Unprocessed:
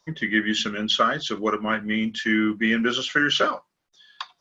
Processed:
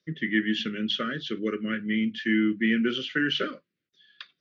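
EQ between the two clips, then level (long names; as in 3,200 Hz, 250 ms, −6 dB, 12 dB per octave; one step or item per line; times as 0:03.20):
high-pass filter 130 Hz 12 dB per octave
Butterworth band-reject 860 Hz, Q 0.64
high-frequency loss of the air 260 metres
0.0 dB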